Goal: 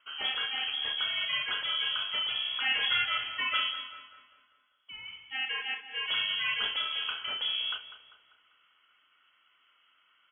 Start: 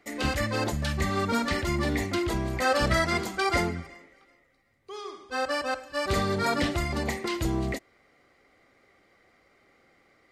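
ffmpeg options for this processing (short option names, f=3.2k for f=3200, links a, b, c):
-filter_complex "[0:a]asplit=2[a][b];[b]aecho=0:1:32|68:0.316|0.133[c];[a][c]amix=inputs=2:normalize=0,lowpass=f=2.9k:t=q:w=0.5098,lowpass=f=2.9k:t=q:w=0.6013,lowpass=f=2.9k:t=q:w=0.9,lowpass=f=2.9k:t=q:w=2.563,afreqshift=-3400,asplit=2[d][e];[e]adelay=197,lowpass=f=2.4k:p=1,volume=-11dB,asplit=2[f][g];[g]adelay=197,lowpass=f=2.4k:p=1,volume=0.53,asplit=2[h][i];[i]adelay=197,lowpass=f=2.4k:p=1,volume=0.53,asplit=2[j][k];[k]adelay=197,lowpass=f=2.4k:p=1,volume=0.53,asplit=2[l][m];[m]adelay=197,lowpass=f=2.4k:p=1,volume=0.53,asplit=2[n][o];[o]adelay=197,lowpass=f=2.4k:p=1,volume=0.53[p];[f][h][j][l][n][p]amix=inputs=6:normalize=0[q];[d][q]amix=inputs=2:normalize=0,volume=-5dB"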